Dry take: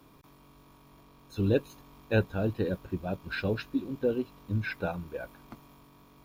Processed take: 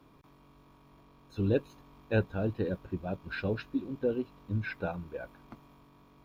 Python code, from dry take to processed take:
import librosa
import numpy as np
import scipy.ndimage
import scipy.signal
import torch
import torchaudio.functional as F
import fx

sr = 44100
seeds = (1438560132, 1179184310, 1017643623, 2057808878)

y = fx.high_shelf(x, sr, hz=5700.0, db=-11.5)
y = y * 10.0 ** (-2.0 / 20.0)